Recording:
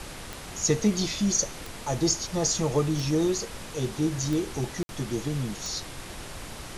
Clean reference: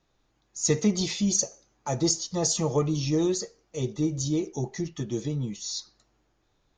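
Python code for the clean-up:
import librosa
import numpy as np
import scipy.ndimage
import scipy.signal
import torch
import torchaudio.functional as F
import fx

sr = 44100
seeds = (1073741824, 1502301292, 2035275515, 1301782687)

y = fx.fix_declick_ar(x, sr, threshold=10.0)
y = fx.fix_ambience(y, sr, seeds[0], print_start_s=0.05, print_end_s=0.55, start_s=4.83, end_s=4.89)
y = fx.noise_reduce(y, sr, print_start_s=0.05, print_end_s=0.55, reduce_db=30.0)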